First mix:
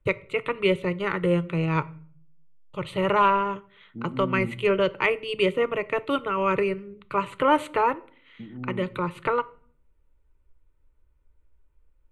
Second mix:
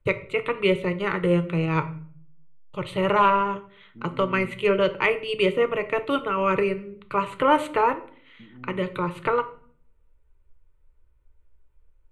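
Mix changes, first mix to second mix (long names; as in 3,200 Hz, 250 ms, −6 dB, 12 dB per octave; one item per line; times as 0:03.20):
first voice: send +7.5 dB
second voice −8.0 dB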